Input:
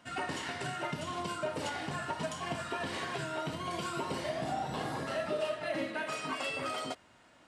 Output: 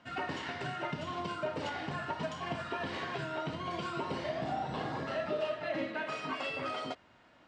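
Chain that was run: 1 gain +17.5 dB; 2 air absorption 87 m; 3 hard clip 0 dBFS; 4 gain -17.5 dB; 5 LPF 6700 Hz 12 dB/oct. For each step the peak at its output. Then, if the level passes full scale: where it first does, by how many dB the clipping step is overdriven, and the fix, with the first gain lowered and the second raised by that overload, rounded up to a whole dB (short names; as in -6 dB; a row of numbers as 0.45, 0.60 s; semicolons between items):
-5.0, -5.5, -5.5, -23.0, -23.0 dBFS; no overload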